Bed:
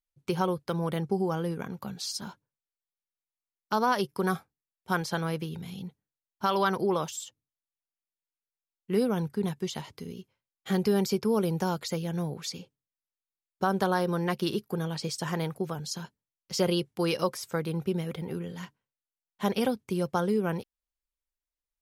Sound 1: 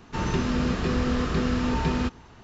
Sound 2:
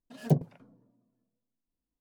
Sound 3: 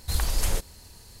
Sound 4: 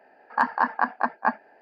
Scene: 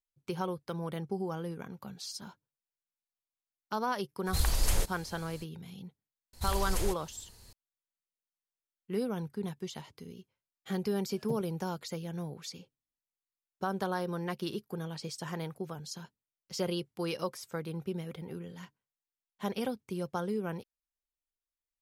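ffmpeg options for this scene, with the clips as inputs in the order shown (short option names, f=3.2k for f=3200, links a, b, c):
-filter_complex "[3:a]asplit=2[a][b];[0:a]volume=-7dB[c];[a]atrim=end=1.2,asetpts=PTS-STARTPTS,volume=-2.5dB,afade=t=in:d=0.02,afade=t=out:st=1.18:d=0.02,adelay=187425S[d];[b]atrim=end=1.2,asetpts=PTS-STARTPTS,volume=-7dB,afade=t=in:d=0.004:c=hsin,afade=t=out:st=1.196:d=0.004:c=hsin,adelay=6330[e];[2:a]atrim=end=2,asetpts=PTS-STARTPTS,volume=-15dB,afade=t=in:d=0.004:c=hsin,afade=t=out:st=1.996:d=0.004:c=hsin,adelay=10990[f];[c][d][e][f]amix=inputs=4:normalize=0"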